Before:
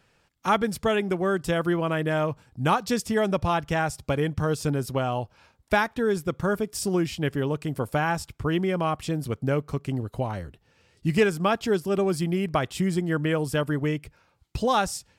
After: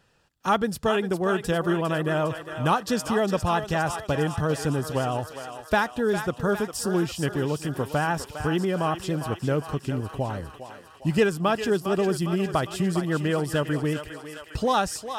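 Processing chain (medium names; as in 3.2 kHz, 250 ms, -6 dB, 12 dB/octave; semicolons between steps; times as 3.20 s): band-stop 2.2 kHz, Q 5.7; thinning echo 405 ms, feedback 69%, high-pass 580 Hz, level -8 dB; vibrato 11 Hz 38 cents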